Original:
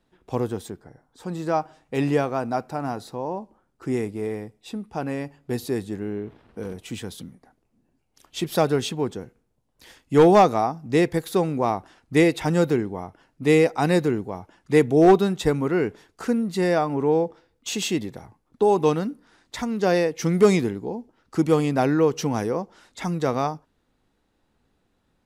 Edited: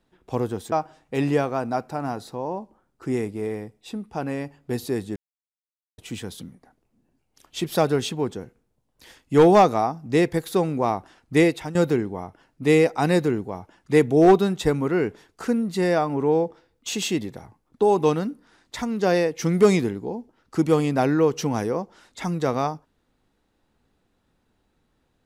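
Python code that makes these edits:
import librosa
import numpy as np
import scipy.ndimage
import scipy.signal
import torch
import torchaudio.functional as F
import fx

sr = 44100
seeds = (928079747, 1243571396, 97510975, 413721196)

y = fx.edit(x, sr, fx.cut(start_s=0.72, length_s=0.8),
    fx.silence(start_s=5.96, length_s=0.82),
    fx.fade_out_to(start_s=12.25, length_s=0.3, floor_db=-15.5), tone=tone)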